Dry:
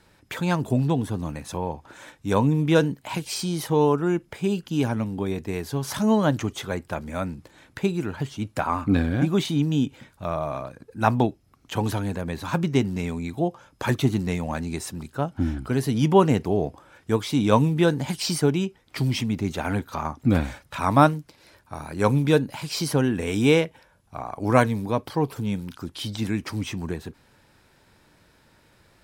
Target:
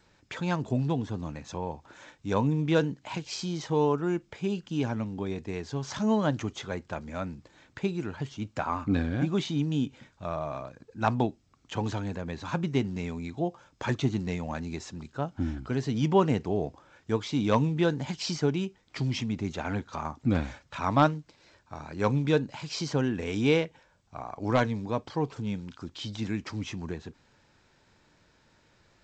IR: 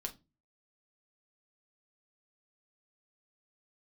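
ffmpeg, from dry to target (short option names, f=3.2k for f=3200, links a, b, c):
-filter_complex "[0:a]aeval=exprs='0.562*(abs(mod(val(0)/0.562+3,4)-2)-1)':c=same,asplit=2[a][b];[1:a]atrim=start_sample=2205,lowshelf=f=360:g=-7[c];[b][c]afir=irnorm=-1:irlink=0,volume=-18dB[d];[a][d]amix=inputs=2:normalize=0,volume=-6dB" -ar 16000 -c:a g722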